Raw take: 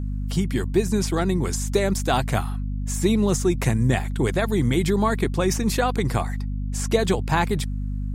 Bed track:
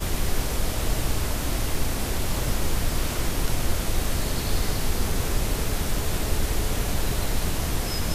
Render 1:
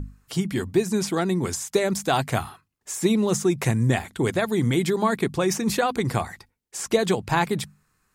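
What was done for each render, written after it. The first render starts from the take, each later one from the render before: notches 50/100/150/200/250 Hz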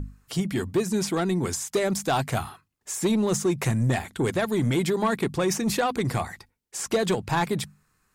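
soft clip -16 dBFS, distortion -15 dB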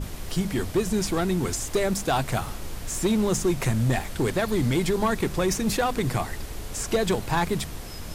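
add bed track -10.5 dB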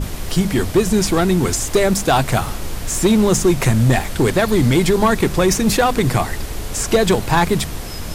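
gain +9 dB

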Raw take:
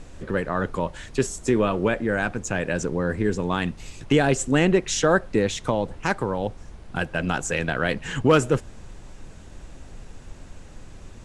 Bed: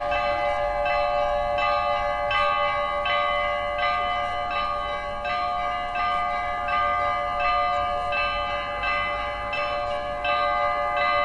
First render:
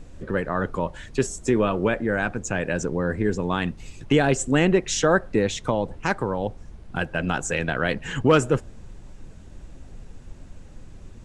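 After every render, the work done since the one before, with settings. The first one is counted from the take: denoiser 6 dB, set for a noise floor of -44 dBFS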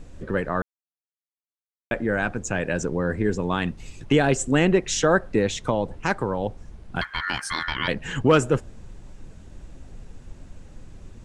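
0.62–1.91 mute; 7.01–7.88 ring modulator 1600 Hz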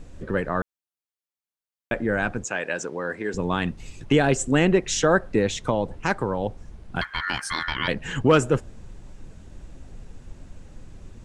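2.44–3.34 weighting filter A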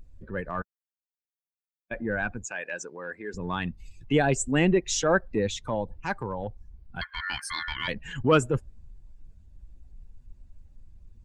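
per-bin expansion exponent 1.5; transient shaper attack -5 dB, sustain 0 dB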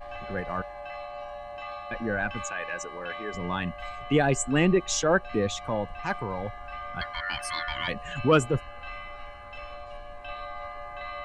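add bed -15.5 dB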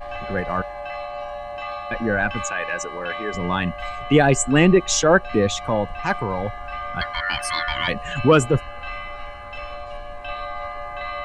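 gain +7.5 dB; limiter -3 dBFS, peak gain reduction 3 dB

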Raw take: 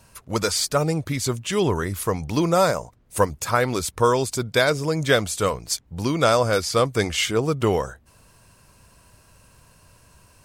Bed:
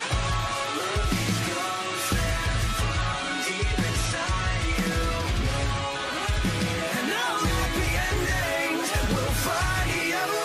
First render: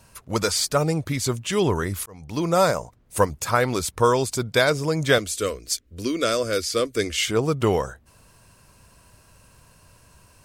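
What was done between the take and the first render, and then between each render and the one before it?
2.06–2.61 fade in; 5.18–7.28 fixed phaser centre 350 Hz, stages 4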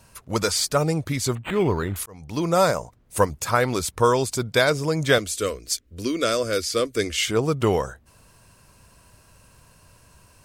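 1.35–1.96 decimation joined by straight lines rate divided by 8×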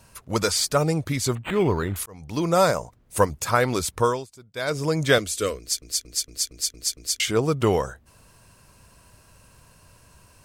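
3.97–4.84 dip -22 dB, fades 0.30 s; 5.59 stutter in place 0.23 s, 7 plays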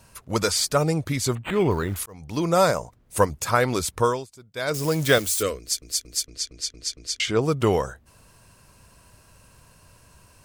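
1.71–2.13 short-mantissa float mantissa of 4-bit; 4.74–5.43 switching spikes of -23 dBFS; 6.26–7.41 LPF 6000 Hz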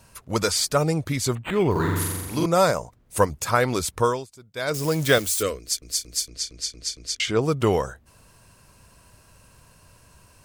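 1.71–2.46 flutter echo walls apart 7.4 m, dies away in 1.3 s; 5.79–7.15 doubler 34 ms -10 dB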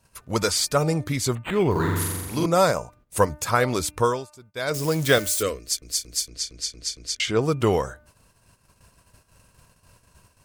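de-hum 299.8 Hz, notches 9; gate -52 dBFS, range -12 dB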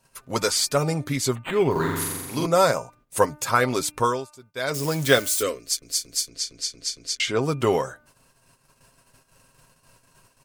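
bell 70 Hz -14 dB 1.2 oct; comb 7.5 ms, depth 40%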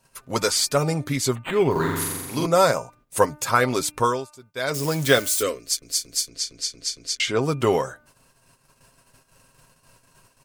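gain +1 dB; limiter -3 dBFS, peak gain reduction 1.5 dB

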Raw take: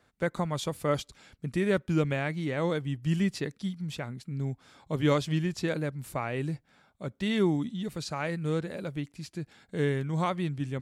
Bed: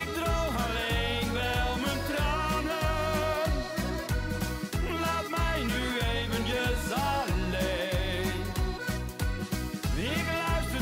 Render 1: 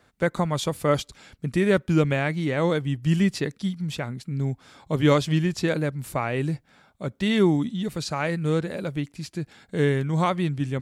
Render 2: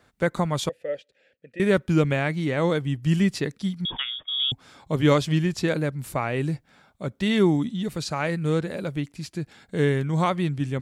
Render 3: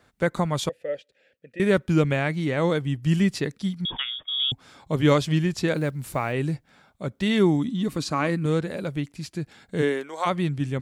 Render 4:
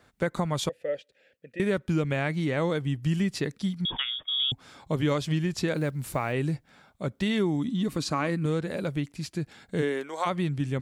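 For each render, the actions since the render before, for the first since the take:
gain +6 dB
0.69–1.6 vowel filter e; 3.85–4.52 inverted band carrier 3500 Hz
5.74–6.34 block floating point 7-bit; 7.68–8.46 small resonant body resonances 280/1100 Hz, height 11 dB; 9.81–10.25 HPF 180 Hz -> 590 Hz 24 dB/oct
compressor 3:1, threshold -24 dBFS, peak gain reduction 8 dB

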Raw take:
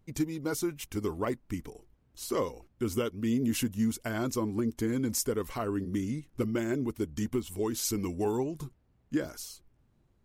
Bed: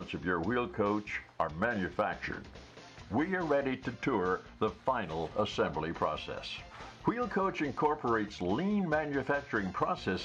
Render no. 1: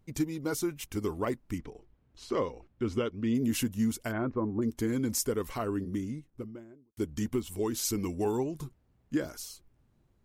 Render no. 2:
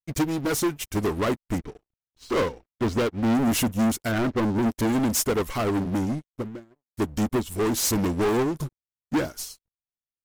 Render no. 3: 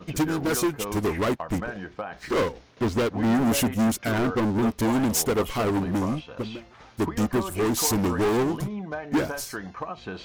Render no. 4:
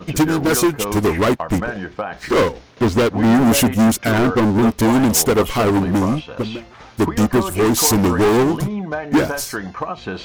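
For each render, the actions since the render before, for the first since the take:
1.58–3.35 LPF 4000 Hz; 4.11–4.61 LPF 2500 Hz -> 1100 Hz 24 dB/oct; 5.57–6.97 studio fade out
sample leveller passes 5; upward expander 2.5:1, over -41 dBFS
add bed -2.5 dB
gain +8.5 dB

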